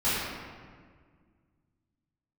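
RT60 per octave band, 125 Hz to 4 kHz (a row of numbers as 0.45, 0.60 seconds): 2.7, 2.5, 1.9, 1.6, 1.5, 1.1 seconds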